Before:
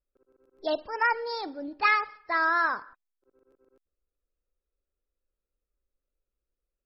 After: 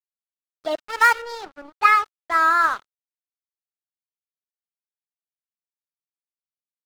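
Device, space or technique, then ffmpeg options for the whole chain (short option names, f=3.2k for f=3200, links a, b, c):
pocket radio on a weak battery: -filter_complex "[0:a]highpass=270,lowpass=3.8k,aeval=exprs='sgn(val(0))*max(abs(val(0))-0.0119,0)':c=same,equalizer=f=1.3k:t=o:w=0.25:g=7,asettb=1/sr,asplit=3[a][b][c];[a]atrim=end=0.784[d];[b]atrim=start=0.78:end=1.22,asetpts=PTS-STARTPTS,afade=t=in:d=0.004:c=qsin,afade=t=out:st=0.436:d=0.004:c=qsin,highshelf=f=2.3k:g=12[e];[c]atrim=start=1.216[f];[d][e]acrossfade=d=0.004:c1=hsin:c2=qsin[g];[g][f]acrossfade=d=0.004:c1=qsin:c2=hsin,volume=5dB"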